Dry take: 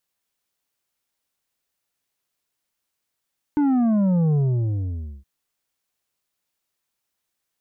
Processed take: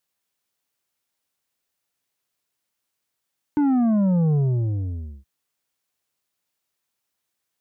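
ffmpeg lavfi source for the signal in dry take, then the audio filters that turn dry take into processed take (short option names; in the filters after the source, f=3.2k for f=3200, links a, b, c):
-f lavfi -i "aevalsrc='0.141*clip((1.67-t)/0.9,0,1)*tanh(2.24*sin(2*PI*300*1.67/log(65/300)*(exp(log(65/300)*t/1.67)-1)))/tanh(2.24)':d=1.67:s=44100"
-af "highpass=59"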